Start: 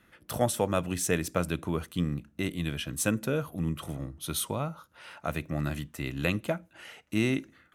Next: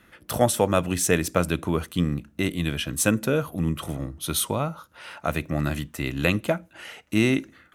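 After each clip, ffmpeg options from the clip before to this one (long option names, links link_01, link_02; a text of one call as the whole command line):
ffmpeg -i in.wav -af "equalizer=frequency=140:width_type=o:width=0.77:gain=-2,volume=6.5dB" out.wav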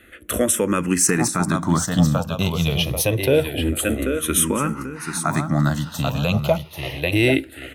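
ffmpeg -i in.wav -filter_complex "[0:a]asplit=2[link_01][link_02];[link_02]aecho=0:1:788|1576|2364|3152:0.422|0.16|0.0609|0.0231[link_03];[link_01][link_03]amix=inputs=2:normalize=0,alimiter=level_in=10.5dB:limit=-1dB:release=50:level=0:latency=1,asplit=2[link_04][link_05];[link_05]afreqshift=-0.26[link_06];[link_04][link_06]amix=inputs=2:normalize=1,volume=-2dB" out.wav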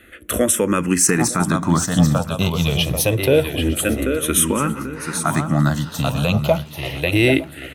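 ffmpeg -i in.wav -af "aecho=1:1:909|1818|2727:0.112|0.0404|0.0145,volume=2dB" out.wav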